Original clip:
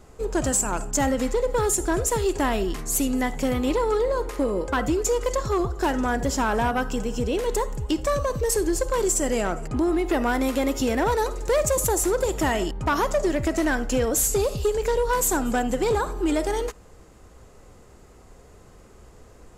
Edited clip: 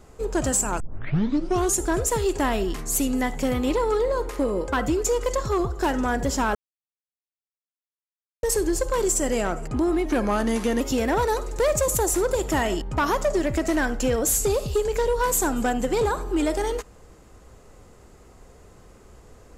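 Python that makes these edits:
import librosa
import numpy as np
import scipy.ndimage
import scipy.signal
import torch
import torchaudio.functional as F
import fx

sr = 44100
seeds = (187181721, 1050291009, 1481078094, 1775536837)

y = fx.edit(x, sr, fx.tape_start(start_s=0.8, length_s=0.97),
    fx.silence(start_s=6.55, length_s=1.88),
    fx.speed_span(start_s=10.05, length_s=0.65, speed=0.86), tone=tone)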